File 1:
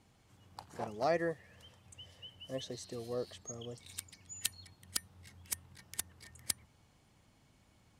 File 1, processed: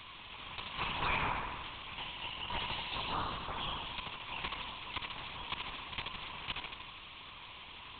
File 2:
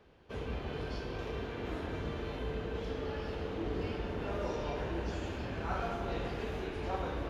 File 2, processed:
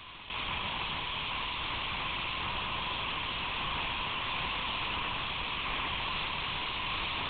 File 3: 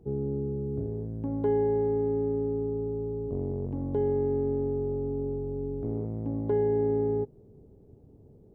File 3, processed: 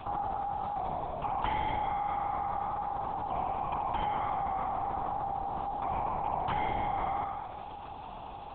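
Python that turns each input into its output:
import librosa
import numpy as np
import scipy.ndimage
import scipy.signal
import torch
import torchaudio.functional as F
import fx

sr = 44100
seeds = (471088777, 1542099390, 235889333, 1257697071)

y = fx.spec_clip(x, sr, under_db=30)
y = scipy.signal.sosfilt(scipy.signal.cheby2(4, 50, 230.0, 'highpass', fs=sr, output='sos'), y)
y = 10.0 ** (-24.0 / 20.0) * np.tanh(y / 10.0 ** (-24.0 / 20.0))
y = fx.fixed_phaser(y, sr, hz=1700.0, stages=6)
y = fx.echo_feedback(y, sr, ms=76, feedback_pct=56, wet_db=-6.5)
y = fx.lpc_vocoder(y, sr, seeds[0], excitation='whisper', order=8)
y = fx.env_flatten(y, sr, amount_pct=50)
y = y * librosa.db_to_amplitude(4.0)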